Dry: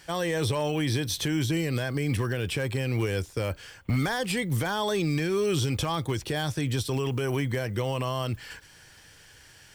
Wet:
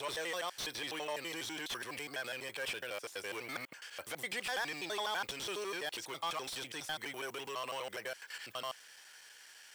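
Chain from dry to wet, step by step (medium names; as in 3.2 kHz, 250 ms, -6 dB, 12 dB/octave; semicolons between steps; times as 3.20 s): slices played last to first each 83 ms, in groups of 7; saturation -22.5 dBFS, distortion -16 dB; Bessel high-pass 880 Hz, order 2; slew-rate limiter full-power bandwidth 74 Hz; trim -2 dB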